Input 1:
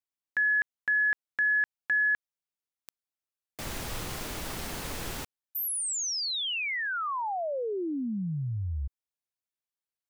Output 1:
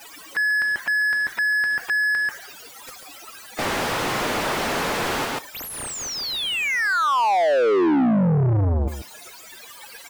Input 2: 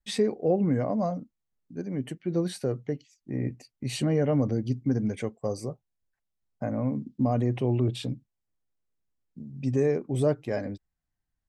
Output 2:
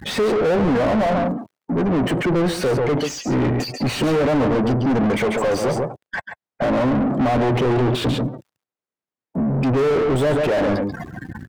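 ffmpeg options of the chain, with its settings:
ffmpeg -i in.wav -filter_complex "[0:a]aeval=exprs='val(0)+0.5*0.0112*sgn(val(0))':channel_layout=same,highpass=79,highshelf=frequency=5400:gain=2,afftdn=noise_reduction=28:noise_floor=-48,aecho=1:1:139:0.251,asplit=2[link_01][link_02];[link_02]highpass=frequency=720:poles=1,volume=40dB,asoftclip=type=tanh:threshold=-12dB[link_03];[link_01][link_03]amix=inputs=2:normalize=0,lowpass=frequency=1200:poles=1,volume=-6dB,volume=1dB" out.wav

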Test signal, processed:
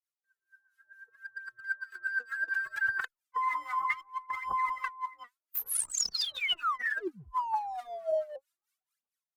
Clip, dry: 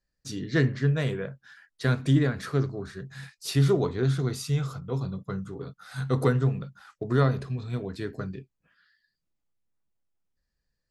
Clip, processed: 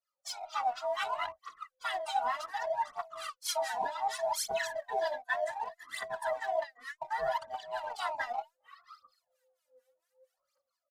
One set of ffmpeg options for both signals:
ffmpeg -i in.wav -filter_complex "[0:a]afftfilt=real='real(if(lt(b,1008),b+24*(1-2*mod(floor(b/24),2)),b),0)':imag='imag(if(lt(b,1008),b+24*(1-2*mod(floor(b/24),2)),b),0)':win_size=2048:overlap=0.75,highshelf=frequency=3100:gain=5.5,dynaudnorm=framelen=190:gausssize=7:maxgain=14.5dB,highpass=frequency=610:poles=1,aphaser=in_gain=1:out_gain=1:delay=4.2:decay=0.77:speed=0.66:type=triangular,equalizer=frequency=1300:width=1.3:gain=9,aresample=32000,aresample=44100,acrossover=split=980[link_01][link_02];[link_01]aeval=exprs='val(0)*(1-1/2+1/2*cos(2*PI*4.4*n/s))':channel_layout=same[link_03];[link_02]aeval=exprs='val(0)*(1-1/2-1/2*cos(2*PI*4.4*n/s))':channel_layout=same[link_04];[link_03][link_04]amix=inputs=2:normalize=0,asplit=2[link_05][link_06];[link_06]aeval=exprs='sgn(val(0))*max(abs(val(0))-0.0251,0)':channel_layout=same,volume=-6.5dB[link_07];[link_05][link_07]amix=inputs=2:normalize=0,afftfilt=real='re*lt(hypot(re,im),6.31)':imag='im*lt(hypot(re,im),6.31)':win_size=1024:overlap=0.75,areverse,acompressor=threshold=-22dB:ratio=4,areverse,asplit=2[link_08][link_09];[link_09]adelay=2.3,afreqshift=-2.6[link_10];[link_08][link_10]amix=inputs=2:normalize=1,volume=-6.5dB" out.wav

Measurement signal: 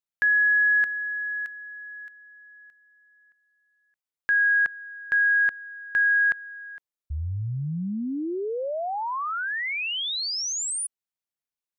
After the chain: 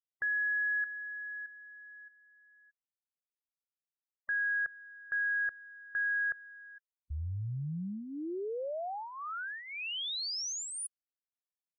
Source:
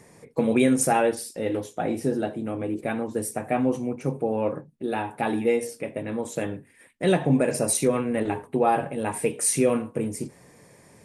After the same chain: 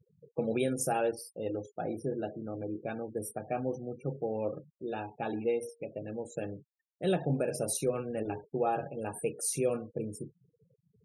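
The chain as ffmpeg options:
ffmpeg -i in.wav -af "equalizer=frequency=250:width_type=o:width=0.33:gain=-8,equalizer=frequency=1000:width_type=o:width=0.33:gain=-10,equalizer=frequency=2000:width_type=o:width=0.33:gain=-12,equalizer=frequency=8000:width_type=o:width=0.33:gain=-6,afftfilt=real='re*gte(hypot(re,im),0.0126)':imag='im*gte(hypot(re,im),0.0126)':win_size=1024:overlap=0.75,volume=-7dB" out.wav

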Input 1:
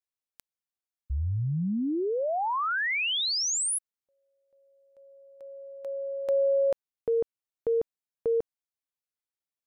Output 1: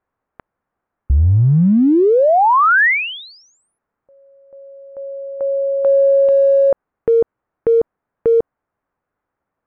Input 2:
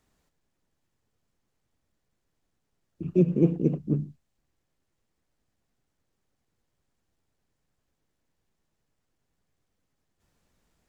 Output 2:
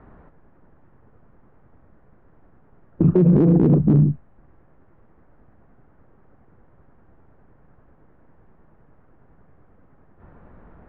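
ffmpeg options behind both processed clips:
ffmpeg -i in.wav -af "lowpass=frequency=1500:width=0.5412,lowpass=frequency=1500:width=1.3066,acompressor=threshold=-31dB:ratio=5:attack=0.28:release=51:knee=6:detection=peak,alimiter=level_in=33dB:limit=-1dB:release=50:level=0:latency=1,volume=-7.5dB" out.wav

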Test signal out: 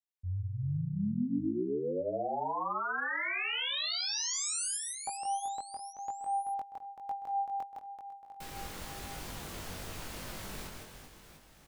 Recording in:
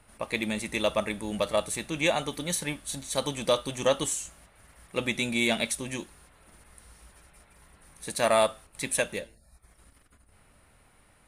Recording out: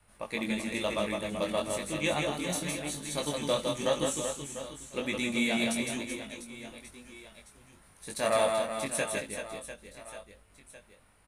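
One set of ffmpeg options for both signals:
ffmpeg -i in.wav -af "aecho=1:1:160|384|697.6|1137|1751:0.631|0.398|0.251|0.158|0.1,flanger=delay=19.5:depth=2.5:speed=0.97,adynamicequalizer=threshold=0.00562:dfrequency=240:dqfactor=1.4:tfrequency=240:tqfactor=1.4:attack=5:release=100:ratio=0.375:range=1.5:mode=boostabove:tftype=bell,volume=-2dB" out.wav

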